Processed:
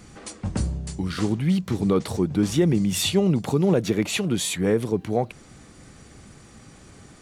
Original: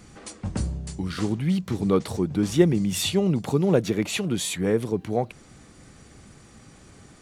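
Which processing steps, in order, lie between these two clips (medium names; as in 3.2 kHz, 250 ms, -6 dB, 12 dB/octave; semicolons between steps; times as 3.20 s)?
loudness maximiser +11 dB; trim -9 dB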